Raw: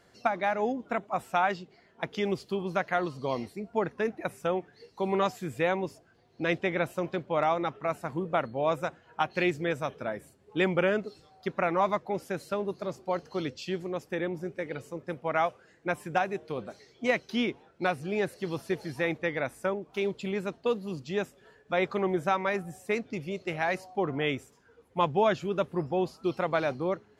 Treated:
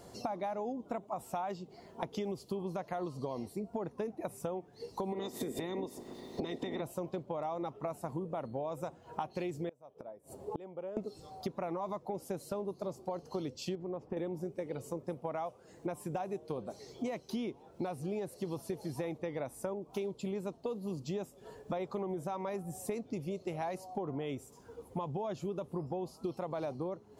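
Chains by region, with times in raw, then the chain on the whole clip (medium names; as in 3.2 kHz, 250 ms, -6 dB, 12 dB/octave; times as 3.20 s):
5.12–6.80 s: spectral peaks clipped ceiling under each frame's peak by 21 dB + small resonant body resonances 250/360/1900/3600 Hz, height 17 dB, ringing for 30 ms + compression 5:1, threshold -31 dBFS
9.69–10.97 s: peaking EQ 620 Hz +10 dB 1.9 oct + inverted gate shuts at -26 dBFS, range -33 dB
13.75–14.17 s: low-pass 1.9 kHz + compression 4:1, threshold -34 dBFS
whole clip: FFT filter 1 kHz 0 dB, 1.6 kHz -14 dB, 9.7 kHz +3 dB; peak limiter -22.5 dBFS; compression 6:1, threshold -46 dBFS; trim +10 dB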